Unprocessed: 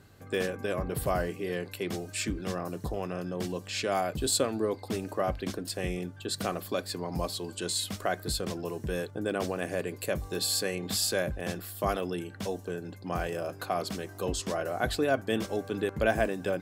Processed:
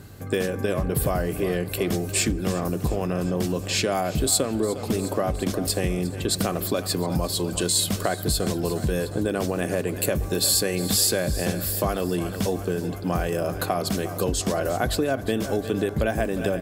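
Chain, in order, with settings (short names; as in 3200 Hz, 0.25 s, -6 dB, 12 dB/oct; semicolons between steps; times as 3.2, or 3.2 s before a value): low shelf 450 Hz +6.5 dB; feedback echo 0.356 s, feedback 59%, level -15.5 dB; on a send at -22 dB: reverb RT60 3.4 s, pre-delay 62 ms; on the sum: compressor, threshold -28 dBFS, peak gain reduction 10.5 dB; high shelf 7200 Hz +9 dB; gain +7.5 dB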